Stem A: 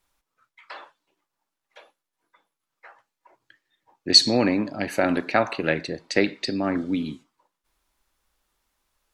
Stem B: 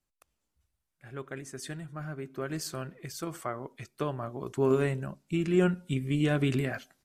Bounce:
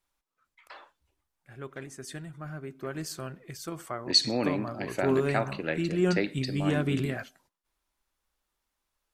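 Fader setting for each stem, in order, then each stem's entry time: -8.0 dB, -1.0 dB; 0.00 s, 0.45 s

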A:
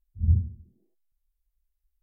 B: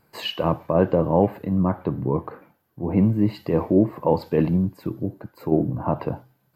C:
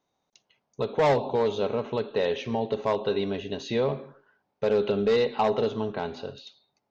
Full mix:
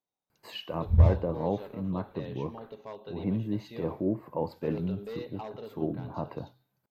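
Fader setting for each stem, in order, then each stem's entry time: +2.0 dB, -11.5 dB, -17.0 dB; 0.70 s, 0.30 s, 0.00 s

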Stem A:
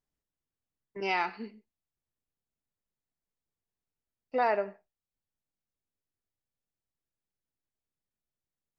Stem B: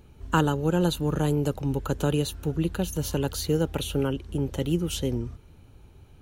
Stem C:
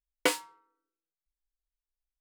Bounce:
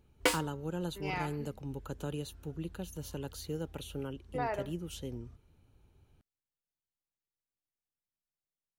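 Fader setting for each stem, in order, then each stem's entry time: -8.0 dB, -13.5 dB, -2.0 dB; 0.00 s, 0.00 s, 0.00 s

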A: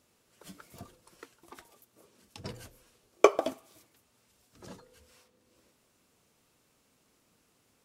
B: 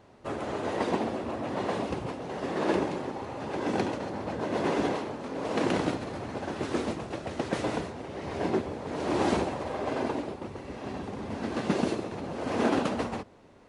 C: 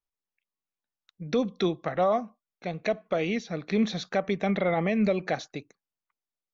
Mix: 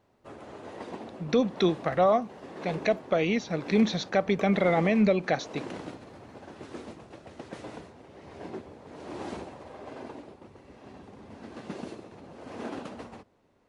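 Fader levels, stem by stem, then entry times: -20.0 dB, -11.5 dB, +2.0 dB; 1.15 s, 0.00 s, 0.00 s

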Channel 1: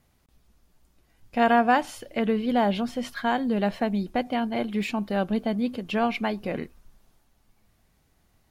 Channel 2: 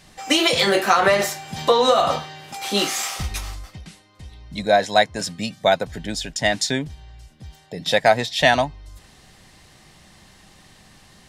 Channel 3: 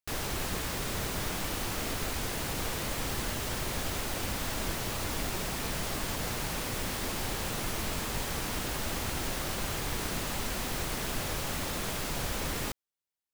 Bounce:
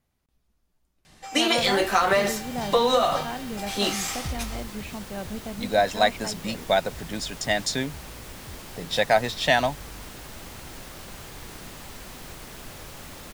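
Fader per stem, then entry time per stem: -9.5 dB, -4.5 dB, -7.5 dB; 0.00 s, 1.05 s, 1.50 s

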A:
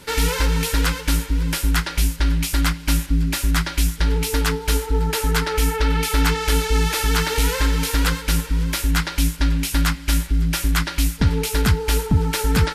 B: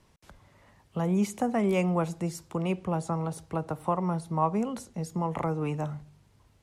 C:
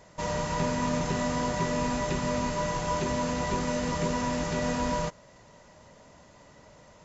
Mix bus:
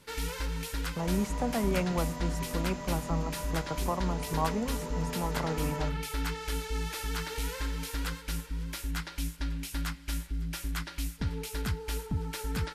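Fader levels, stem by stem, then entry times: -15.0 dB, -4.5 dB, -11.0 dB; 0.00 s, 0.00 s, 0.80 s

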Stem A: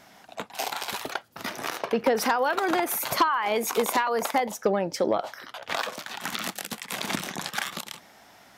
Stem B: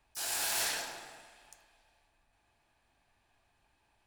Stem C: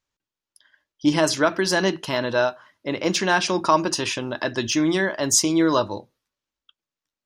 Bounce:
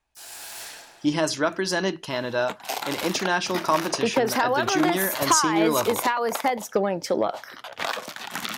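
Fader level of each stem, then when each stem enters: +1.0 dB, -5.5 dB, -4.0 dB; 2.10 s, 0.00 s, 0.00 s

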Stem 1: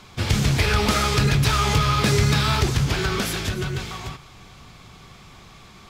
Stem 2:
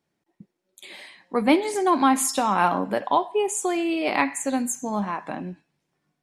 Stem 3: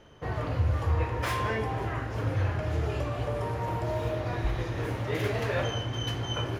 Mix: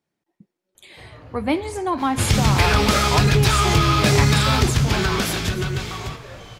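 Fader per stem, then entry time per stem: +2.5 dB, -3.0 dB, -11.5 dB; 2.00 s, 0.00 s, 0.75 s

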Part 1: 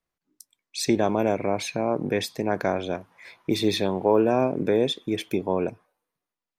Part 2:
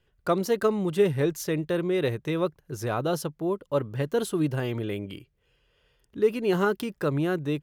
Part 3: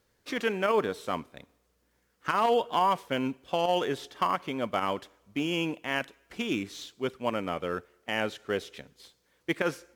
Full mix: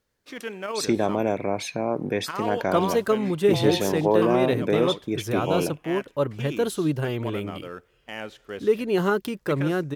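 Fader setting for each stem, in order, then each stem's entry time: -1.0 dB, +1.5 dB, -5.5 dB; 0.00 s, 2.45 s, 0.00 s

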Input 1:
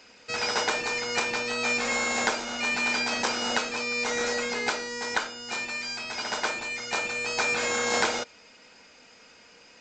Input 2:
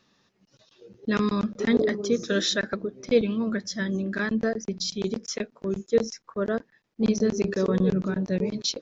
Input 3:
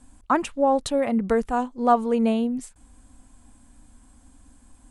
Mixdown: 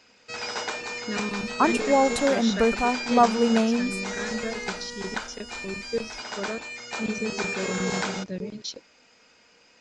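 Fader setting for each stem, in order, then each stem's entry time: -4.5 dB, -7.0 dB, 0.0 dB; 0.00 s, 0.00 s, 1.30 s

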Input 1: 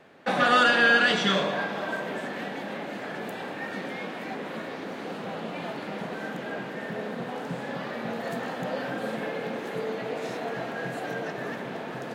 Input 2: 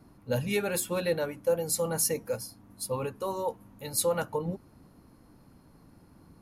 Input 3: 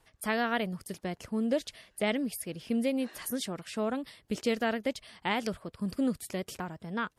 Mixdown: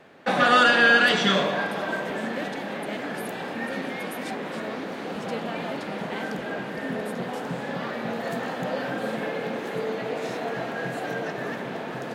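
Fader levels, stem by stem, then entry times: +2.5 dB, mute, -6.5 dB; 0.00 s, mute, 0.85 s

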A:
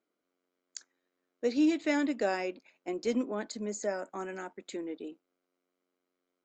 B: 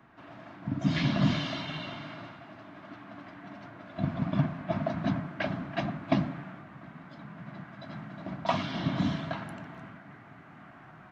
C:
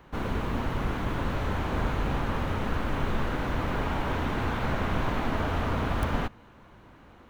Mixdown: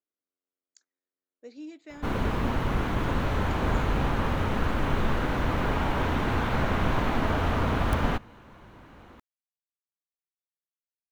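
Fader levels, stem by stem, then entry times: -16.0 dB, mute, +2.5 dB; 0.00 s, mute, 1.90 s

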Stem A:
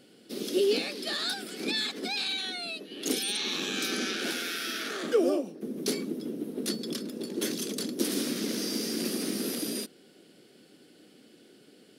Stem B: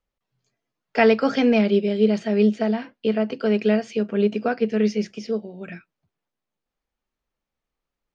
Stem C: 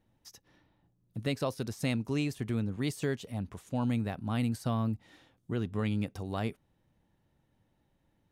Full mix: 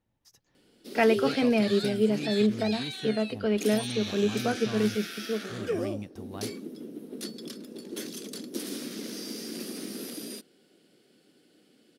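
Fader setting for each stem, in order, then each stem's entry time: -6.0 dB, -6.0 dB, -7.0 dB; 0.55 s, 0.00 s, 0.00 s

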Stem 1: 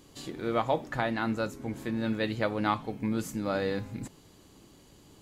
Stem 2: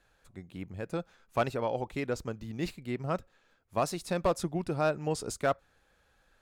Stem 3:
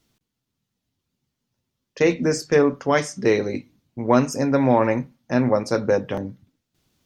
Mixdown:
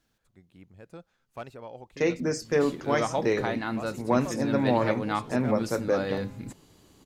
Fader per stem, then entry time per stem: -1.0 dB, -11.0 dB, -7.0 dB; 2.45 s, 0.00 s, 0.00 s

